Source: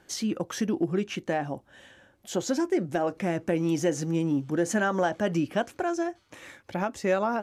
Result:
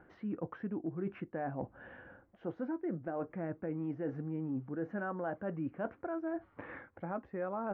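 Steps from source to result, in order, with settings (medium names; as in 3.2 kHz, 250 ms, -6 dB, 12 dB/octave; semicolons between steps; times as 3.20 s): low-pass 1.8 kHz 24 dB/octave; reverse; compression 5:1, threshold -39 dBFS, peak gain reduction 16.5 dB; reverse; speed mistake 25 fps video run at 24 fps; trim +2.5 dB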